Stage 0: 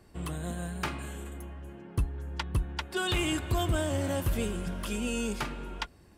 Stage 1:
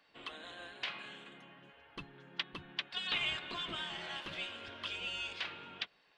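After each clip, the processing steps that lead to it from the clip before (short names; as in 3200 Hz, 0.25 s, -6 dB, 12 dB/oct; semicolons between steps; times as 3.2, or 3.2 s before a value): Chebyshev low-pass 3600 Hz, order 3; spectral gate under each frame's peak -10 dB weak; tilt shelf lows -9 dB, about 1400 Hz; gain -2.5 dB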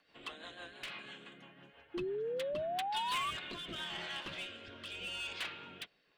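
overloaded stage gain 36 dB; rotary speaker horn 6 Hz, later 0.75 Hz, at 2.87; painted sound rise, 1.94–3.31, 340–1200 Hz -39 dBFS; gain +2 dB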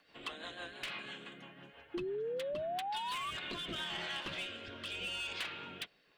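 compressor 10:1, threshold -39 dBFS, peak gain reduction 8.5 dB; gain +3.5 dB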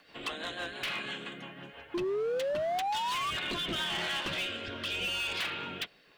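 hard clip -37 dBFS, distortion -15 dB; gain +8 dB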